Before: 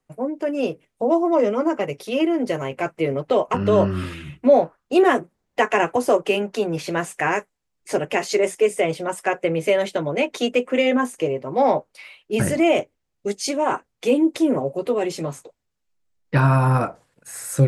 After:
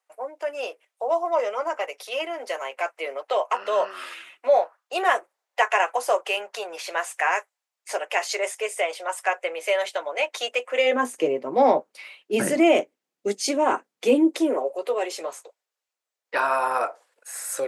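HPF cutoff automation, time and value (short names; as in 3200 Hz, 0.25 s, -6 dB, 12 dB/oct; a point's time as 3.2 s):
HPF 24 dB/oct
10.67 s 610 Hz
11.18 s 220 Hz
14.08 s 220 Hz
14.77 s 480 Hz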